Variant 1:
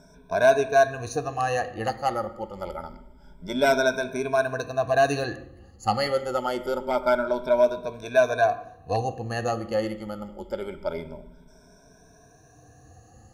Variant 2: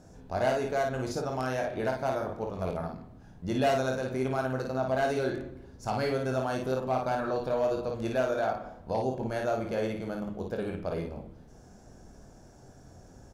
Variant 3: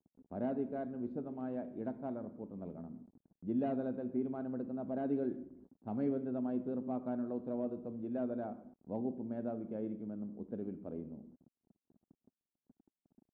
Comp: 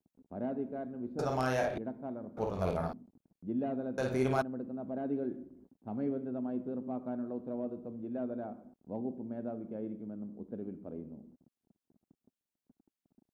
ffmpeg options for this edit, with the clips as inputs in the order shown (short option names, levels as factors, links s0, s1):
-filter_complex "[1:a]asplit=3[s0][s1][s2];[2:a]asplit=4[s3][s4][s5][s6];[s3]atrim=end=1.192[s7];[s0]atrim=start=1.188:end=1.782[s8];[s4]atrim=start=1.778:end=2.372[s9];[s1]atrim=start=2.368:end=2.932[s10];[s5]atrim=start=2.928:end=3.982[s11];[s2]atrim=start=3.978:end=4.422[s12];[s6]atrim=start=4.418[s13];[s7][s8]acrossfade=d=0.004:c1=hsin:c2=hsin[s14];[s14][s9]acrossfade=d=0.004:c1=hsin:c2=hsin[s15];[s15][s10]acrossfade=d=0.004:c1=hsin:c2=hsin[s16];[s16][s11]acrossfade=d=0.004:c1=hsin:c2=hsin[s17];[s17][s12]acrossfade=d=0.004:c1=hsin:c2=hsin[s18];[s18][s13]acrossfade=d=0.004:c1=hsin:c2=hsin"